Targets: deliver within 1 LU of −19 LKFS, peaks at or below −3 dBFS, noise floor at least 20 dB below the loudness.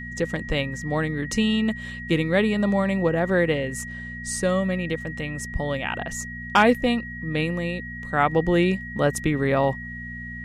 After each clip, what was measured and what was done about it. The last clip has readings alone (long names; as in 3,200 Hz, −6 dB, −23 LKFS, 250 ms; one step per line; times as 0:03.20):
mains hum 60 Hz; hum harmonics up to 240 Hz; level of the hum −36 dBFS; interfering tone 1,900 Hz; level of the tone −35 dBFS; integrated loudness −24.0 LKFS; sample peak −6.0 dBFS; target loudness −19.0 LKFS
→ hum removal 60 Hz, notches 4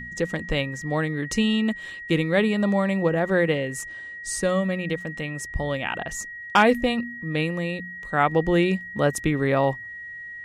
mains hum none found; interfering tone 1,900 Hz; level of the tone −35 dBFS
→ notch filter 1,900 Hz, Q 30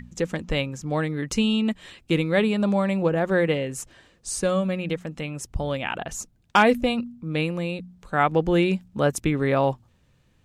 interfering tone none found; integrated loudness −24.5 LKFS; sample peak −6.0 dBFS; target loudness −19.0 LKFS
→ level +5.5 dB
brickwall limiter −3 dBFS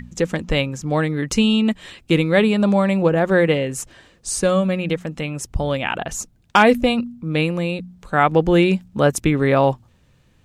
integrated loudness −19.0 LKFS; sample peak −3.0 dBFS; background noise floor −56 dBFS